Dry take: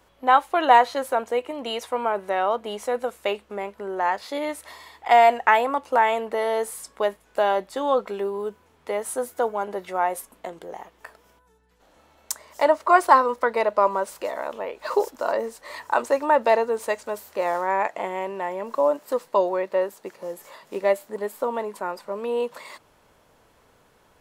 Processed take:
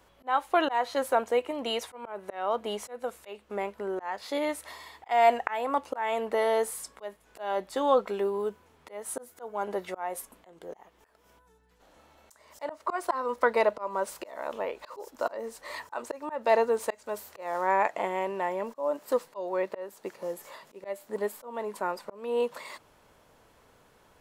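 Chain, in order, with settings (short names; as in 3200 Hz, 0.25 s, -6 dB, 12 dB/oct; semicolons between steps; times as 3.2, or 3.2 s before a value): auto swell 0.304 s; gain -1.5 dB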